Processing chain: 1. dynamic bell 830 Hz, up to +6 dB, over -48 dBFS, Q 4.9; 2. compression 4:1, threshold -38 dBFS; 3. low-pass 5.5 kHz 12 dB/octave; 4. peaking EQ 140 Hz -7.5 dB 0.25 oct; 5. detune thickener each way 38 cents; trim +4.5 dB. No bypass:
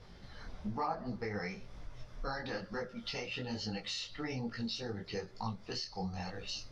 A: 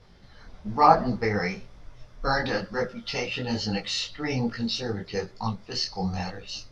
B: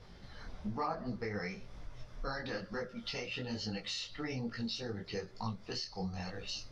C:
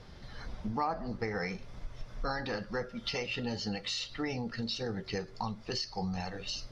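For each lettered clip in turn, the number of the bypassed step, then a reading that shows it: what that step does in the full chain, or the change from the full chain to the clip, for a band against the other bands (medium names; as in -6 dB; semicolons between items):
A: 2, mean gain reduction 8.0 dB; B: 1, 1 kHz band -1.5 dB; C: 5, loudness change +3.5 LU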